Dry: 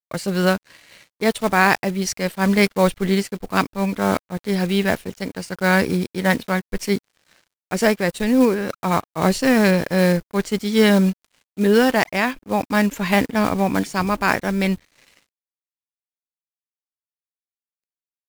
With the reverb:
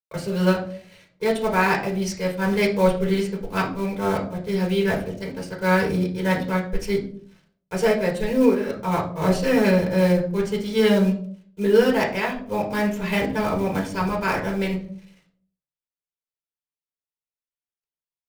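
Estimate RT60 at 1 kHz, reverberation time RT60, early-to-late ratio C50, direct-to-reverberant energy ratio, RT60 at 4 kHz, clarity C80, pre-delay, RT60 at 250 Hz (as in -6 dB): 0.45 s, 0.55 s, 9.0 dB, -2.0 dB, 0.30 s, 12.5 dB, 4 ms, 0.70 s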